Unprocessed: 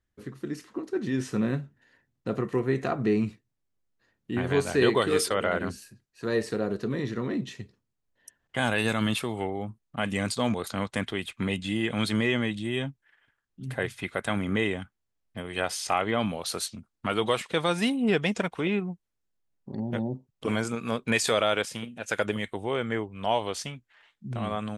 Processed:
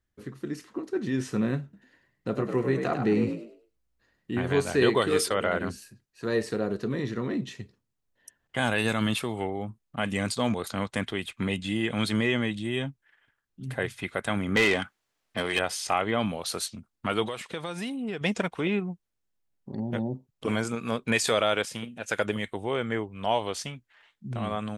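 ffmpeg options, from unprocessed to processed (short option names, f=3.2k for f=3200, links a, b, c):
-filter_complex "[0:a]asettb=1/sr,asplit=3[a][b][c];[a]atrim=end=1.634[d];[b]atrim=start=1.63:end=4.31,asetpts=PTS-STARTPTS,afade=t=in:d=0.004:c=qsin,afade=t=out:st=2.676:d=0.004:c=qsin,asplit=5[e][f][g][h][i];[f]adelay=100,afreqshift=58,volume=-7dB[j];[g]adelay=200,afreqshift=116,volume=-17.5dB[k];[h]adelay=300,afreqshift=174,volume=-27.9dB[l];[i]adelay=400,afreqshift=232,volume=-38.4dB[m];[e][j][k][l][m]amix=inputs=5:normalize=0,atrim=end_sample=118188[n];[c]atrim=start=4.306[o];[d][n]acrossfade=d=0.004:c1=hsin:c2=qsin[p];[p][o]acrossfade=d=0.004:c1=qsin:c2=hsin,asettb=1/sr,asplit=3[q][r][s];[q]atrim=end=14.564[t];[r]atrim=start=14.56:end=15.59,asetpts=PTS-STARTPTS,afade=t=in:d=0.004:c=qsin,afade=t=out:st=1.026:d=0.004:c=qsin,asplit=2[u][v];[v]highpass=f=720:p=1,volume=20dB,asoftclip=type=tanh:threshold=-13dB[w];[u][w]amix=inputs=2:normalize=0,lowpass=f=5.3k:p=1,volume=-6dB[x];[s]atrim=start=15.586[y];[t][x]acrossfade=d=0.004:c1=hsin:c2=qsin[z];[z][y]acrossfade=d=0.004:c1=qsin:c2=hsin,asettb=1/sr,asplit=3[aa][ab][ac];[aa]atrim=end=17.264[ad];[ab]atrim=start=17.26:end=18.21,asetpts=PTS-STARTPTS,afade=t=in:d=0.004:c=qsin,afade=t=out:st=0.946:d=0.004:c=qsin,acompressor=threshold=-32dB:ratio=3:attack=3.2:release=140:knee=1:detection=peak[ae];[ac]atrim=start=18.206[af];[ad][ae]acrossfade=d=0.004:c1=hsin:c2=qsin[ag];[ag][af]acrossfade=d=0.004:c1=qsin:c2=hsin"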